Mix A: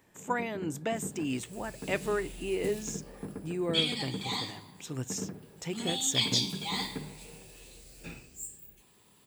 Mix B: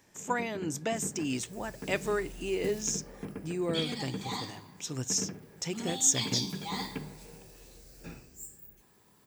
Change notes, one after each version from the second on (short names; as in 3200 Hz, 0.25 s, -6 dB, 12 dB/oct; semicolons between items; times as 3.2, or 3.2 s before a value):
first sound: remove LPF 1600 Hz; second sound: add band shelf 4700 Hz -9.5 dB 2.4 oct; master: add bell 5700 Hz +10.5 dB 0.76 oct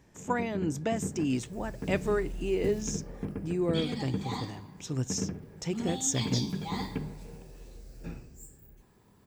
first sound: remove HPF 96 Hz 24 dB/oct; master: add tilt -2 dB/oct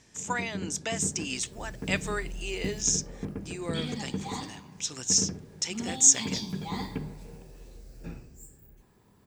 speech: add weighting filter ITU-R 468